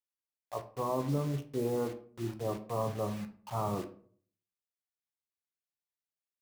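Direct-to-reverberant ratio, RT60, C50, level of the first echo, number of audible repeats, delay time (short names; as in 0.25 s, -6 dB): 6.5 dB, 0.50 s, 14.0 dB, none, none, none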